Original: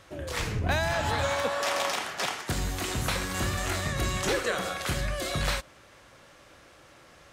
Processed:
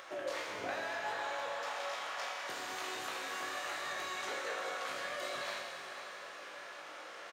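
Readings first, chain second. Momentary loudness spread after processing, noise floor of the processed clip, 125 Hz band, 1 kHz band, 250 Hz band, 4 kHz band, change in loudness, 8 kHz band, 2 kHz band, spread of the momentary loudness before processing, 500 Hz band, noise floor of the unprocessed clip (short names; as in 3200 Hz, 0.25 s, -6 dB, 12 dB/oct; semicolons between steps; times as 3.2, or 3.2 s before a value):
9 LU, -49 dBFS, -33.0 dB, -7.0 dB, -17.0 dB, -9.5 dB, -10.5 dB, -12.5 dB, -7.5 dB, 4 LU, -9.5 dB, -55 dBFS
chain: vibrato 5.5 Hz 15 cents; HPF 630 Hz 12 dB/oct; compressor 16:1, threshold -43 dBFS, peak gain reduction 18 dB; high shelf 3400 Hz -8 dB; doubler 19 ms -5 dB; upward compressor, threshold -54 dBFS; bell 11000 Hz -8.5 dB 0.39 oct; notch 7800 Hz, Q 25; on a send: diffused feedback echo 0.519 s, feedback 46%, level -10.5 dB; on the sum: Schroeder reverb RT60 2.3 s, combs from 26 ms, DRR 0.5 dB; gain +4.5 dB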